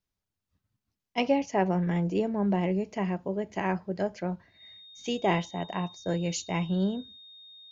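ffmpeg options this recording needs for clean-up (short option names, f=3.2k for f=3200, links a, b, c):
-af "bandreject=f=3.7k:w=30"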